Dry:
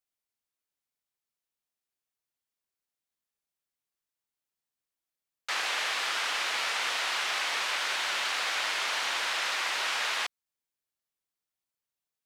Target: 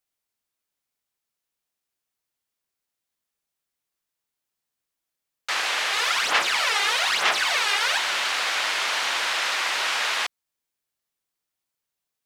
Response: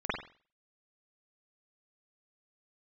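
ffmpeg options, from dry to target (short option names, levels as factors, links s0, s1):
-filter_complex "[0:a]asplit=3[s0][s1][s2];[s0]afade=t=out:st=5.92:d=0.02[s3];[s1]aphaser=in_gain=1:out_gain=1:delay=2.5:decay=0.64:speed=1.1:type=sinusoidal,afade=t=in:st=5.92:d=0.02,afade=t=out:st=7.98:d=0.02[s4];[s2]afade=t=in:st=7.98:d=0.02[s5];[s3][s4][s5]amix=inputs=3:normalize=0,volume=1.88"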